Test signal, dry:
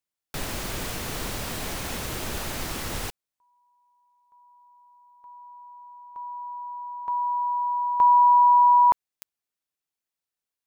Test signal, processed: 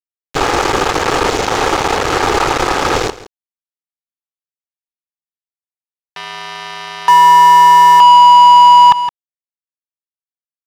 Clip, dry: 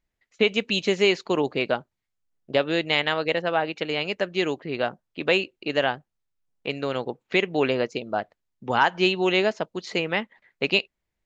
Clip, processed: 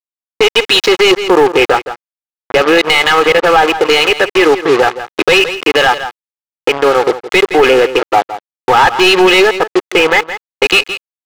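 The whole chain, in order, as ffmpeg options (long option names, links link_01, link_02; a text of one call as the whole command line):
ffmpeg -i in.wav -filter_complex "[0:a]afwtdn=0.0251,highshelf=frequency=5400:gain=11.5,aecho=1:1:2.4:0.8,adynamicequalizer=threshold=0.0224:dfrequency=1200:dqfactor=3.2:tfrequency=1200:tqfactor=3.2:attack=5:release=100:ratio=0.375:range=1.5:mode=boostabove:tftype=bell,aresample=16000,aeval=exprs='sgn(val(0))*max(abs(val(0))-0.0133,0)':channel_layout=same,aresample=44100,acrusher=bits=5:mix=0:aa=0.5,asplit=2[link_01][link_02];[link_02]highpass=frequency=720:poles=1,volume=23dB,asoftclip=type=tanh:threshold=-3dB[link_03];[link_01][link_03]amix=inputs=2:normalize=0,lowpass=frequency=2800:poles=1,volume=-6dB,asplit=2[link_04][link_05];[link_05]aecho=0:1:166:0.133[link_06];[link_04][link_06]amix=inputs=2:normalize=0,alimiter=level_in=11.5dB:limit=-1dB:release=50:level=0:latency=1,volume=-1dB" out.wav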